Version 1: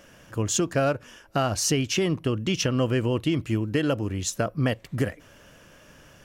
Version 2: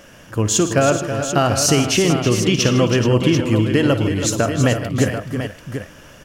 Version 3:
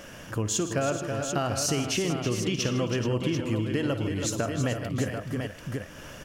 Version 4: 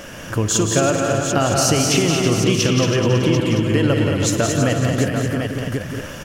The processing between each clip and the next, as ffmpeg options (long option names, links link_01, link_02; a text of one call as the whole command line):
ffmpeg -i in.wav -af "aecho=1:1:56|113|154|325|428|739:0.211|0.15|0.178|0.335|0.237|0.355,volume=7.5dB" out.wav
ffmpeg -i in.wav -af "acompressor=threshold=-34dB:ratio=2" out.wav
ffmpeg -i in.wav -af "aecho=1:1:177|225:0.473|0.501,volume=9dB" out.wav